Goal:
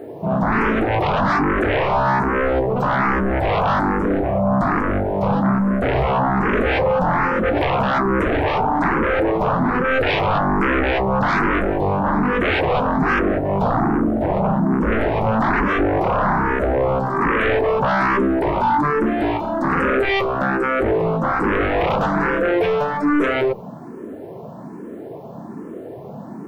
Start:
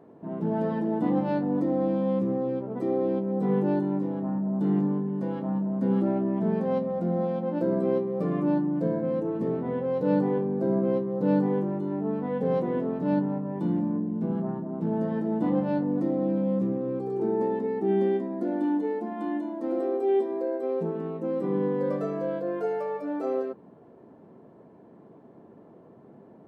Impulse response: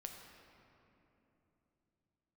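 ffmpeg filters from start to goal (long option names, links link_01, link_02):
-filter_complex "[0:a]aeval=exprs='0.251*sin(PI/2*7.08*val(0)/0.251)':channel_layout=same,acrusher=bits=9:mix=0:aa=0.000001,asplit=2[link_01][link_02];[link_02]afreqshift=1.2[link_03];[link_01][link_03]amix=inputs=2:normalize=1"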